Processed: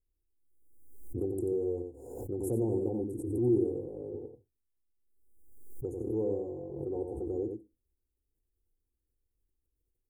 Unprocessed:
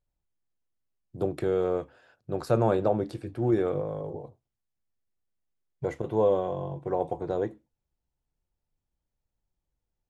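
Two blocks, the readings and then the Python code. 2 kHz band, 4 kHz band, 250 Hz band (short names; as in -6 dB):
under -40 dB, n/a, -1.5 dB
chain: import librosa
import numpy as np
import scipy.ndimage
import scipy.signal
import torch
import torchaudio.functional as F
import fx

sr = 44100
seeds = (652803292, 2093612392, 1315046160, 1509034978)

y = scipy.signal.sosfilt(scipy.signal.cheby2(4, 50, [1200.0, 4500.0], 'bandstop', fs=sr, output='sos'), x)
y = fx.fixed_phaser(y, sr, hz=620.0, stages=6)
y = y + 10.0 ** (-5.0 / 20.0) * np.pad(y, (int(90 * sr / 1000.0), 0))[:len(y)]
y = fx.dynamic_eq(y, sr, hz=490.0, q=1.8, threshold_db=-40.0, ratio=4.0, max_db=-7)
y = fx.pre_swell(y, sr, db_per_s=48.0)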